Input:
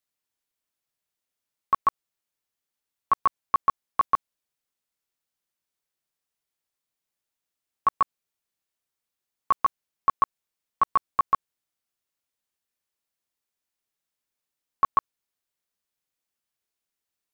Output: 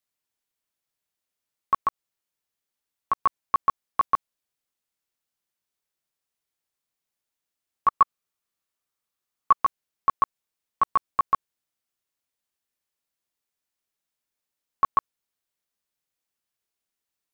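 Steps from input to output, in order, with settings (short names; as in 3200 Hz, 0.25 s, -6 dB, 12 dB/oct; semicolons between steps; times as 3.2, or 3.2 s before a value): 1.77–3.21 compressor, threshold -20 dBFS, peak gain reduction 4.5 dB; 7.88–9.58 bell 1200 Hz +6.5 dB 0.32 oct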